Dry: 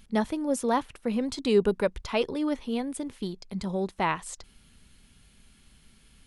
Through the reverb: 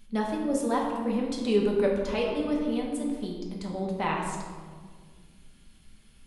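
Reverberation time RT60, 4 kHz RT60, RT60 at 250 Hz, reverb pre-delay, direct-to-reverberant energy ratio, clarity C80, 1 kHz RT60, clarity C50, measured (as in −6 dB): 1.8 s, 0.90 s, 2.4 s, 4 ms, −2.0 dB, 4.5 dB, 1.6 s, 2.5 dB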